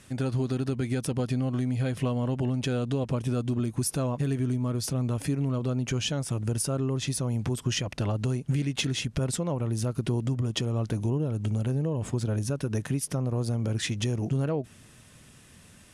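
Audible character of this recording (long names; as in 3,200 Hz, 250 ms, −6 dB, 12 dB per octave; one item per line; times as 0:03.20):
background noise floor −53 dBFS
spectral slope −5.5 dB per octave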